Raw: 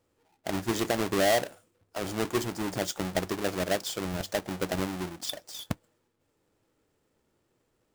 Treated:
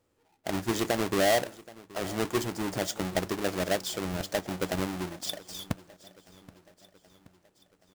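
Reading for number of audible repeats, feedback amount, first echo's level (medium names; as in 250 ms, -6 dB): 3, 57%, -20.5 dB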